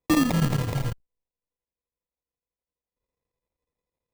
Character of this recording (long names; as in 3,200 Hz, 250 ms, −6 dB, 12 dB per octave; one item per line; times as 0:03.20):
a buzz of ramps at a fixed pitch in blocks of 8 samples
phaser sweep stages 6, 2.2 Hz, lowest notch 400–4,100 Hz
aliases and images of a low sample rate 1,500 Hz, jitter 0%
chopped level 12 Hz, depth 65%, duty 80%